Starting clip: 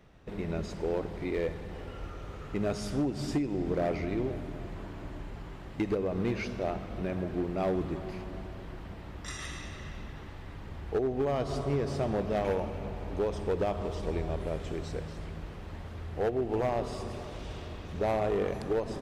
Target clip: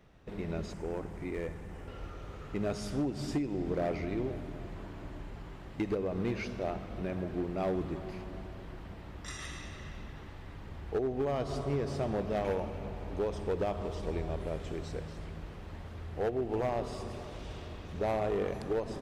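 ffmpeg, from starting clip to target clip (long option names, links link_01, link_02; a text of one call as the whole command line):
ffmpeg -i in.wav -filter_complex "[0:a]asettb=1/sr,asplit=3[link_01][link_02][link_03];[link_01]atrim=end=0.734[link_04];[link_02]atrim=start=0.73:end=1.88,asetpts=PTS-STARTPTS,afade=type=in:duration=0.004:curve=qsin,afade=type=out:start_time=1.146:duration=0.004:curve=qsin,equalizer=frequency=500:width_type=o:width=1:gain=-5,equalizer=frequency=4000:width_type=o:width=1:gain=-9,equalizer=frequency=8000:width_type=o:width=1:gain=5[link_05];[link_03]atrim=start=1.876[link_06];[link_04][link_05]acrossfade=duration=0.004:curve1=hsin:curve2=qsin[link_07];[link_07][link_06]acrossfade=duration=0.004:curve1=qsin:curve2=hsin,volume=-2.5dB" out.wav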